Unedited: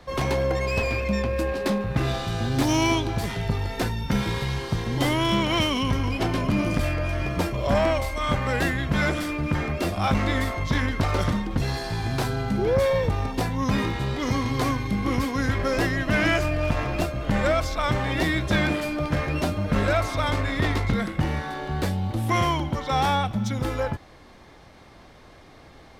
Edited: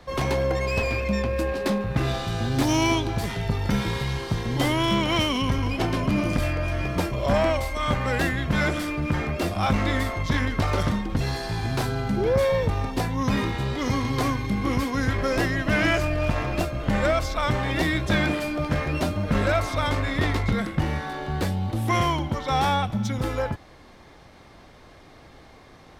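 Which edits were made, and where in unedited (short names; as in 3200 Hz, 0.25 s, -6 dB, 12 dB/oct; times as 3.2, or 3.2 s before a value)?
3.69–4.1 cut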